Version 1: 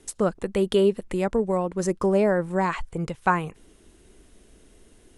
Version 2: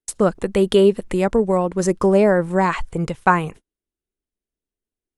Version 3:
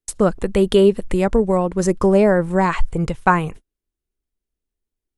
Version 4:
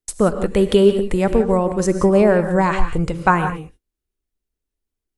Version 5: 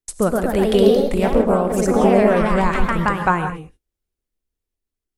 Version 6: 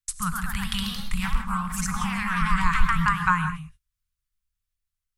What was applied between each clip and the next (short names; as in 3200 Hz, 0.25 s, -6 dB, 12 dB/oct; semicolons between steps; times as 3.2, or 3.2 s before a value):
gate -41 dBFS, range -43 dB; gain +6 dB
low shelf 78 Hz +11.5 dB
non-linear reverb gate 0.2 s rising, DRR 8.5 dB
echoes that change speed 0.145 s, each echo +2 st, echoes 3; gain -2.5 dB
elliptic band-stop 160–1100 Hz, stop band 40 dB